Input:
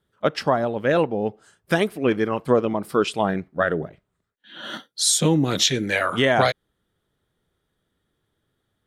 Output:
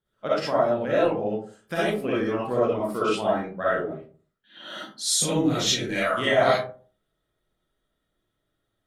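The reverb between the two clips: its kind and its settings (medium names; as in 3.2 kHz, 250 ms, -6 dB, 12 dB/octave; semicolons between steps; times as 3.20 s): algorithmic reverb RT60 0.42 s, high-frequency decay 0.4×, pre-delay 20 ms, DRR -9 dB; trim -12 dB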